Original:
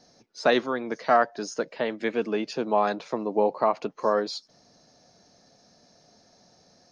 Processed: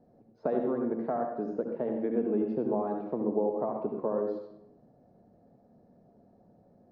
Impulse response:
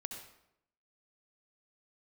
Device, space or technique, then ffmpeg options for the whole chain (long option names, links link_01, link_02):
television next door: -filter_complex "[0:a]acompressor=threshold=-25dB:ratio=3,lowpass=550[link_01];[1:a]atrim=start_sample=2205[link_02];[link_01][link_02]afir=irnorm=-1:irlink=0,volume=4dB"